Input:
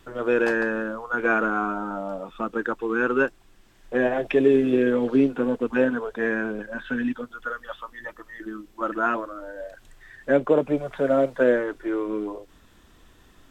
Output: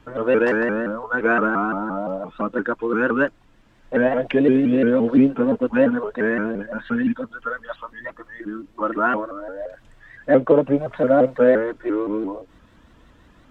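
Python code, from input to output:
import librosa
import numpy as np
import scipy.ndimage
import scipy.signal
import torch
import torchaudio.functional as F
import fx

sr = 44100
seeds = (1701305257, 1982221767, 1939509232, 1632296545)

y = fx.lowpass(x, sr, hz=2000.0, slope=6)
y = fx.notch_comb(y, sr, f0_hz=390.0)
y = fx.vibrato_shape(y, sr, shape='saw_up', rate_hz=5.8, depth_cents=160.0)
y = y * librosa.db_to_amplitude(5.5)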